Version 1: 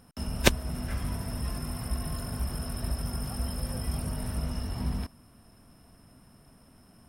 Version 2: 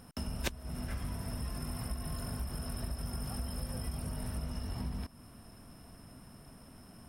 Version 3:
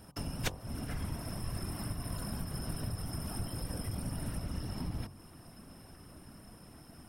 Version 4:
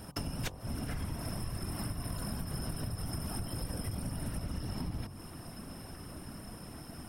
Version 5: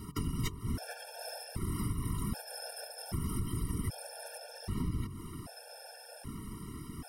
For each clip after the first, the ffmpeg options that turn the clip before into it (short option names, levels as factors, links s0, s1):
-af "acompressor=threshold=0.0112:ratio=4,volume=1.41"
-af "afftfilt=real='hypot(re,im)*cos(2*PI*random(0))':imag='hypot(re,im)*sin(2*PI*random(1))':win_size=512:overlap=0.75,bandreject=f=46.18:t=h:w=4,bandreject=f=92.36:t=h:w=4,bandreject=f=138.54:t=h:w=4,bandreject=f=184.72:t=h:w=4,bandreject=f=230.9:t=h:w=4,bandreject=f=277.08:t=h:w=4,bandreject=f=323.26:t=h:w=4,bandreject=f=369.44:t=h:w=4,bandreject=f=415.62:t=h:w=4,bandreject=f=461.8:t=h:w=4,bandreject=f=507.98:t=h:w=4,bandreject=f=554.16:t=h:w=4,bandreject=f=600.34:t=h:w=4,bandreject=f=646.52:t=h:w=4,bandreject=f=692.7:t=h:w=4,bandreject=f=738.88:t=h:w=4,bandreject=f=785.06:t=h:w=4,bandreject=f=831.24:t=h:w=4,bandreject=f=877.42:t=h:w=4,bandreject=f=923.6:t=h:w=4,bandreject=f=969.78:t=h:w=4,bandreject=f=1015.96:t=h:w=4,bandreject=f=1062.14:t=h:w=4,bandreject=f=1108.32:t=h:w=4,bandreject=f=1154.5:t=h:w=4,bandreject=f=1200.68:t=h:w=4,volume=2.24"
-af "acompressor=threshold=0.00891:ratio=5,volume=2.24"
-af "afftfilt=real='re*gt(sin(2*PI*0.64*pts/sr)*(1-2*mod(floor(b*sr/1024/460),2)),0)':imag='im*gt(sin(2*PI*0.64*pts/sr)*(1-2*mod(floor(b*sr/1024/460),2)),0)':win_size=1024:overlap=0.75,volume=1.5"